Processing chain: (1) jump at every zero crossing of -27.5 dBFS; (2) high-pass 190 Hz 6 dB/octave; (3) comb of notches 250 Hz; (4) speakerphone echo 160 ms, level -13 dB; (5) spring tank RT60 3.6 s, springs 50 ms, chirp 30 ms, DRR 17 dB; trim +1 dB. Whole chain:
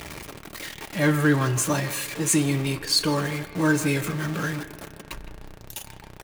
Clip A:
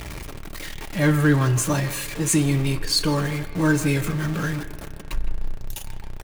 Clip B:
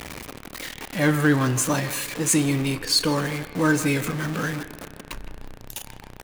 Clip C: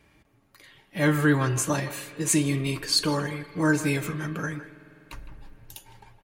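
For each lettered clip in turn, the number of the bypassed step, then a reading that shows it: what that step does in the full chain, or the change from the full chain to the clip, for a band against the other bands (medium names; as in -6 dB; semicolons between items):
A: 2, 125 Hz band +4.5 dB; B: 3, loudness change +1.0 LU; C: 1, distortion -14 dB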